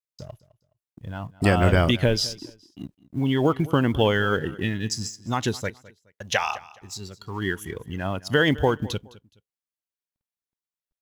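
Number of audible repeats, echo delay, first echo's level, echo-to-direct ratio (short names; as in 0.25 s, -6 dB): 2, 0.21 s, -20.0 dB, -19.5 dB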